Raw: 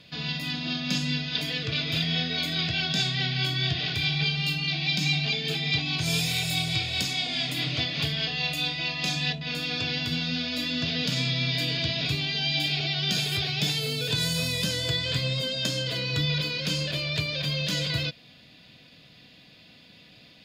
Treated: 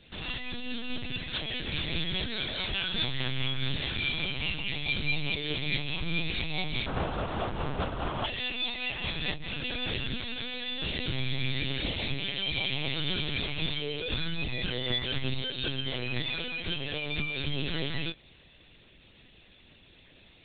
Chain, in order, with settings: chorus 0.13 Hz, delay 16 ms, depth 7.2 ms; 6.86–8.25 s: sample-rate reducer 2.1 kHz, jitter 20%; LPC vocoder at 8 kHz pitch kept

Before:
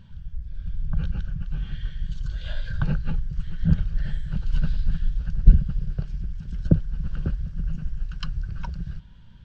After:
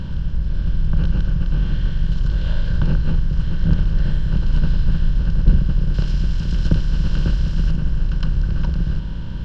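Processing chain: spectral levelling over time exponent 0.4; 5.94–7.71 s: treble shelf 2.5 kHz +10.5 dB; trim -3 dB

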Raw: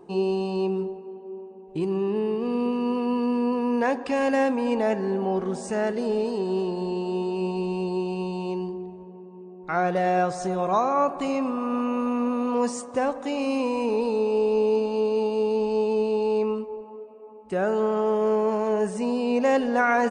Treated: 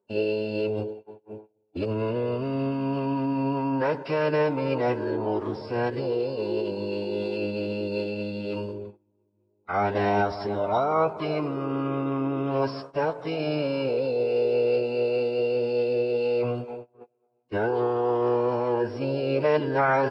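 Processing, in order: gate -37 dBFS, range -25 dB; bass shelf 140 Hz -10 dB; formant-preserving pitch shift -10 st

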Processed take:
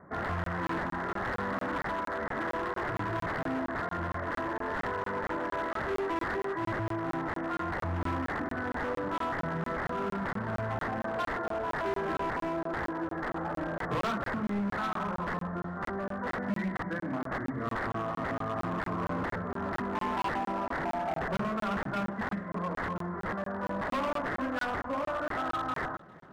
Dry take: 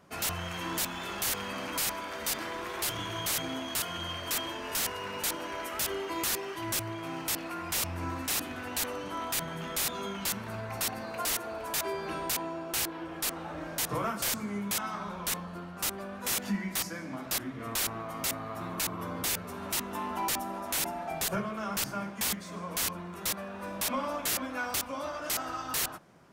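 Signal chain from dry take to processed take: steep low-pass 2 kHz 96 dB/octave; overload inside the chain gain 34 dB; thinning echo 404 ms, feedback 58%, high-pass 1.1 kHz, level -22.5 dB; crackling interface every 0.23 s, samples 1024, zero, from 0.44 s; trim +6 dB

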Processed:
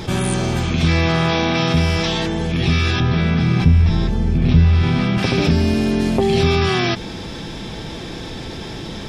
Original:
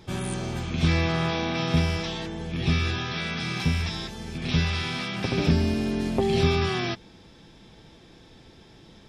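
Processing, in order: 3.00–5.18 s: tilt EQ -3.5 dB/octave; level flattener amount 50%

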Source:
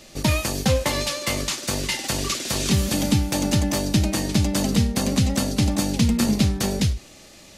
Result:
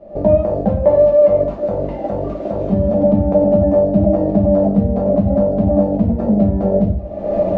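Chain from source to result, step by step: recorder AGC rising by 53 dB/s; resonant low-pass 630 Hz, resonance Q 5.9; reverberation RT60 0.45 s, pre-delay 5 ms, DRR 0.5 dB; trim -2 dB

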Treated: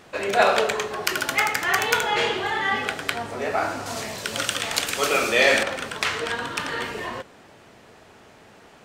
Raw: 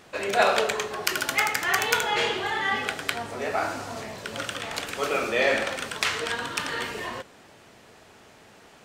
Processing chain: treble shelf 2.9 kHz -3 dB, from 3.86 s +9 dB, from 5.63 s -5 dB; trim +3 dB

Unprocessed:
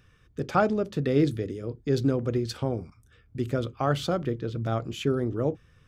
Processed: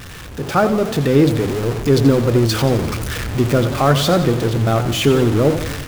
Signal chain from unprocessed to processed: jump at every zero crossing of -29 dBFS; level rider gain up to 11.5 dB; modulated delay 87 ms, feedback 58%, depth 152 cents, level -11 dB

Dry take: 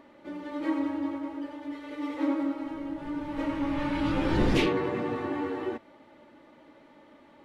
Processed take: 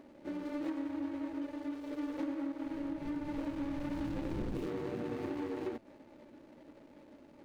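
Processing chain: median filter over 41 samples; compression 6:1, threshold -36 dBFS, peak gain reduction 15 dB; trim +1 dB

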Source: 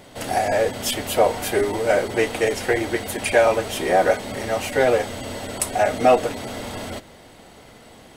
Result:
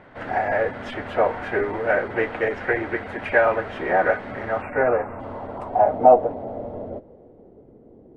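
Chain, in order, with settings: low-pass sweep 1.6 kHz -> 390 Hz, 4.33–7.67 s; harmony voices +3 st -13 dB; spectral selection erased 4.62–5.19 s, 2.8–7.4 kHz; trim -4 dB

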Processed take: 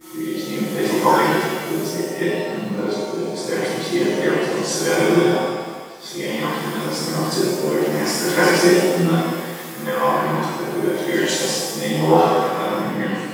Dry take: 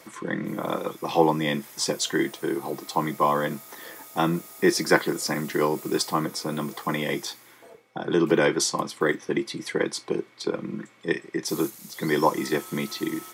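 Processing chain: reverse the whole clip; bit crusher 9-bit; gate with hold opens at -41 dBFS; rotary cabinet horn 0.7 Hz, later 8 Hz, at 11.88 s; pre-echo 147 ms -18 dB; pitch-shifted reverb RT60 1.4 s, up +7 st, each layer -8 dB, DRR -11 dB; trim -3.5 dB

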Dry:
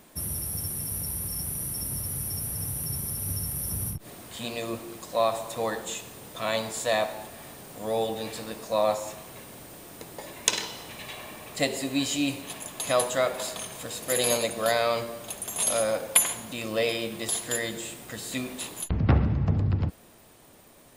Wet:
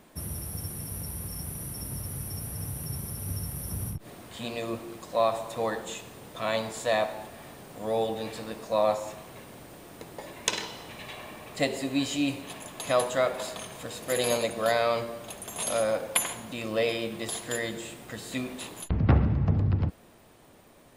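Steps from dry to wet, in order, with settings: treble shelf 4.5 kHz -8 dB

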